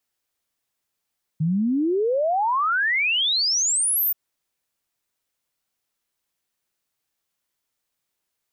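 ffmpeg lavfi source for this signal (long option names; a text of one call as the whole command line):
ffmpeg -f lavfi -i "aevalsrc='0.119*clip(min(t,2.73-t)/0.01,0,1)*sin(2*PI*150*2.73/log(15000/150)*(exp(log(15000/150)*t/2.73)-1))':duration=2.73:sample_rate=44100" out.wav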